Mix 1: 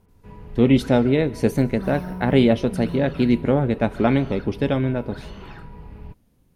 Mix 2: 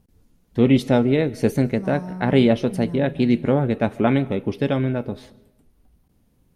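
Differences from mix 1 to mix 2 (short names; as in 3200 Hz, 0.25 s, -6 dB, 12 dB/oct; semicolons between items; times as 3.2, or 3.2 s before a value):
first sound: muted; second sound: add LPF 8900 Hz 24 dB/oct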